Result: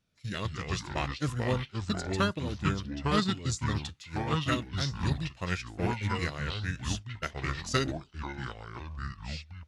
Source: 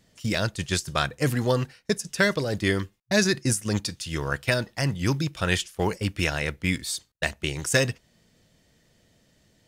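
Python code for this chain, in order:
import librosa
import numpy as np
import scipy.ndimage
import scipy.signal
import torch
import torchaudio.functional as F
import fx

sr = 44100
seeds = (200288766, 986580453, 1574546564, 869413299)

y = fx.echo_pitch(x, sr, ms=118, semitones=-5, count=2, db_per_echo=-3.0)
y = fx.formant_shift(y, sr, semitones=-5)
y = fx.upward_expand(y, sr, threshold_db=-38.0, expansion=1.5)
y = y * 10.0 ** (-5.5 / 20.0)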